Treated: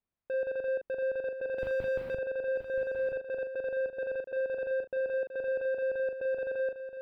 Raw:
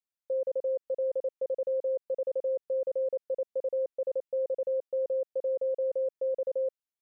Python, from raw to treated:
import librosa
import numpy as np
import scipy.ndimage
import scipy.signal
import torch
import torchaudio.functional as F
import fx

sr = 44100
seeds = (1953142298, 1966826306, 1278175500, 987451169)

y = fx.low_shelf(x, sr, hz=280.0, db=11.0)
y = fx.power_curve(y, sr, exponent=0.35, at=(1.58, 2.15))
y = 10.0 ** (-36.0 / 20.0) * np.tanh(y / 10.0 ** (-36.0 / 20.0))
y = fx.air_absorb(y, sr, metres=480.0)
y = fx.doubler(y, sr, ms=40.0, db=-7.0)
y = y + 10.0 ** (-10.0 / 20.0) * np.pad(y, (int(974 * sr / 1000.0), 0))[:len(y)]
y = F.gain(torch.from_numpy(y), 6.0).numpy()